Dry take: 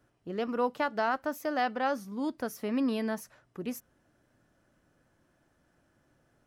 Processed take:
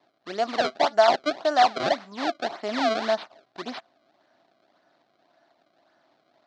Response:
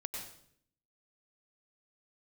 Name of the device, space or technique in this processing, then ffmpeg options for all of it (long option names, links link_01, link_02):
circuit-bent sampling toy: -af "acrusher=samples=28:mix=1:aa=0.000001:lfo=1:lforange=44.8:lforate=1.8,highpass=410,equalizer=frequency=480:width_type=q:width=4:gain=-9,equalizer=frequency=680:width_type=q:width=4:gain=10,equalizer=frequency=2600:width_type=q:width=4:gain=-4,equalizer=frequency=4100:width_type=q:width=4:gain=5,lowpass=frequency=5100:width=0.5412,lowpass=frequency=5100:width=1.3066,volume=7.5dB"